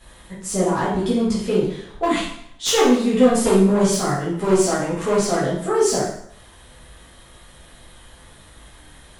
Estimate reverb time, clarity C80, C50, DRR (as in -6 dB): 0.70 s, 6.0 dB, 2.0 dB, -9.0 dB